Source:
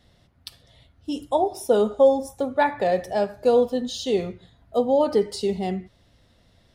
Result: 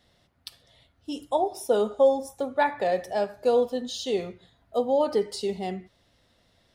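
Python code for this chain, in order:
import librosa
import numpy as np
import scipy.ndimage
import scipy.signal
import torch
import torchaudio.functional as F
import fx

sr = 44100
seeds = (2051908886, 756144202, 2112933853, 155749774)

y = fx.low_shelf(x, sr, hz=230.0, db=-8.5)
y = y * librosa.db_to_amplitude(-2.0)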